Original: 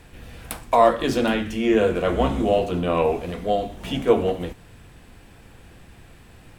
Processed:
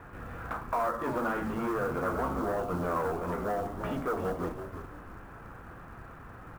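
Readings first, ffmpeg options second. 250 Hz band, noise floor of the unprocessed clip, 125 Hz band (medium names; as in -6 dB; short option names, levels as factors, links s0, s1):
-10.5 dB, -49 dBFS, -8.0 dB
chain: -filter_complex "[0:a]highpass=f=43:p=1,bandreject=f=74.14:t=h:w=4,bandreject=f=148.28:t=h:w=4,bandreject=f=222.42:t=h:w=4,acompressor=threshold=0.0282:ratio=3,aresample=11025,asoftclip=type=hard:threshold=0.0316,aresample=44100,aeval=exprs='val(0)+0.000891*(sin(2*PI*50*n/s)+sin(2*PI*2*50*n/s)/2+sin(2*PI*3*50*n/s)/3+sin(2*PI*4*50*n/s)/4+sin(2*PI*5*50*n/s)/5)':c=same,lowpass=f=1300:t=q:w=3.8,acrusher=bits=6:mode=log:mix=0:aa=0.000001,asplit=5[s0][s1][s2][s3][s4];[s1]adelay=333,afreqshift=-88,volume=0.376[s5];[s2]adelay=666,afreqshift=-176,volume=0.12[s6];[s3]adelay=999,afreqshift=-264,volume=0.0385[s7];[s4]adelay=1332,afreqshift=-352,volume=0.0123[s8];[s0][s5][s6][s7][s8]amix=inputs=5:normalize=0"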